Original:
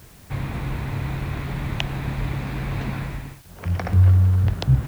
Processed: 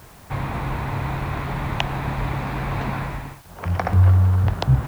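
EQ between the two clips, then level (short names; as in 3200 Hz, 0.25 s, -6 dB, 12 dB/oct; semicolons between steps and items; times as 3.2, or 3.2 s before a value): bell 920 Hz +9 dB 1.6 oct; 0.0 dB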